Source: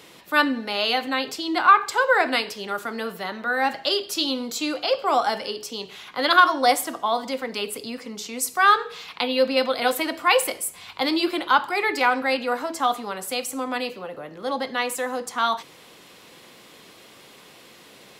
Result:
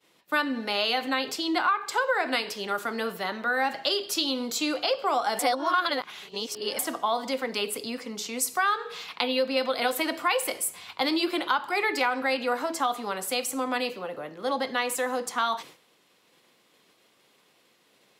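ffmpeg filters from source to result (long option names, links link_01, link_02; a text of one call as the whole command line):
ffmpeg -i in.wav -filter_complex "[0:a]asplit=3[link_01][link_02][link_03];[link_01]atrim=end=5.392[link_04];[link_02]atrim=start=5.388:end=6.792,asetpts=PTS-STARTPTS,areverse[link_05];[link_03]atrim=start=6.788[link_06];[link_04][link_05]acrossfade=duration=0.004:curve1=hsin:curve2=hsin[link_07];[link_07][link_06]acrossfade=duration=0.004:curve1=hsin:curve2=hsin,highpass=frequency=140:poles=1,agate=range=-33dB:threshold=-38dB:ratio=3:detection=peak,acompressor=threshold=-22dB:ratio=5" out.wav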